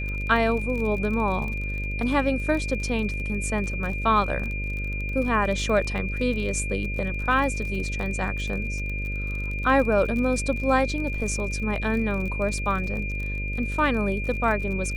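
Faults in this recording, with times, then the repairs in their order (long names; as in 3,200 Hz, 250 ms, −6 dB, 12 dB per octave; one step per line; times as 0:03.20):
mains buzz 50 Hz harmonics 12 −30 dBFS
surface crackle 34 per second −31 dBFS
whistle 2,400 Hz −32 dBFS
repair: click removal
notch filter 2,400 Hz, Q 30
hum removal 50 Hz, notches 12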